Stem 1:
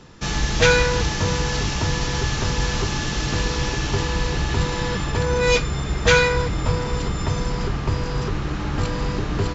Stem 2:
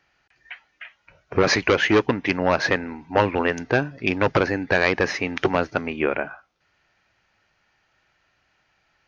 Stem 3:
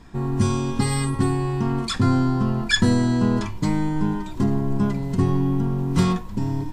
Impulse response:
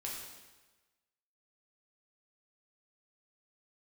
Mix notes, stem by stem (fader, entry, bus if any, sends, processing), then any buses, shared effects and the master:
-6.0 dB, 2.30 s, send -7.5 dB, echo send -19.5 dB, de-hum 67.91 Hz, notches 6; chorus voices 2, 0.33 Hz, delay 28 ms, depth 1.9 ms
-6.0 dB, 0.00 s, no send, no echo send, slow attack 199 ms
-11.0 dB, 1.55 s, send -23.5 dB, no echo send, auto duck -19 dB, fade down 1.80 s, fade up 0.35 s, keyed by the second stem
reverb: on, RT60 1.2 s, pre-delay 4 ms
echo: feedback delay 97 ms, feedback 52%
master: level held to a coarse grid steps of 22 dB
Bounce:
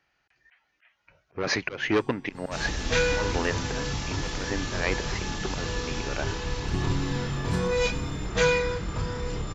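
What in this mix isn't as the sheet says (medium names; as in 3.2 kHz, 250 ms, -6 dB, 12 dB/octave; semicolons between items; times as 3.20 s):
stem 1: send -7.5 dB -> -14.5 dB; master: missing level held to a coarse grid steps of 22 dB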